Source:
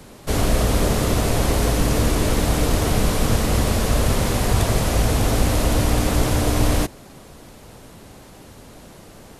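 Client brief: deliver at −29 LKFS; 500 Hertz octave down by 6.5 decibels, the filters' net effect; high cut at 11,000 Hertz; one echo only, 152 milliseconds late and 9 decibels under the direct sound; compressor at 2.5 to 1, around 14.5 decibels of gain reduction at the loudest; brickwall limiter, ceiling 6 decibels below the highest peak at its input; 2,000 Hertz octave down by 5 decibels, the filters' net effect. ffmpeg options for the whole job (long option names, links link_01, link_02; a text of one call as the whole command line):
ffmpeg -i in.wav -af "lowpass=11000,equalizer=frequency=500:width_type=o:gain=-8,equalizer=frequency=2000:width_type=o:gain=-6,acompressor=threshold=-37dB:ratio=2.5,alimiter=level_in=3dB:limit=-24dB:level=0:latency=1,volume=-3dB,aecho=1:1:152:0.355,volume=9.5dB" out.wav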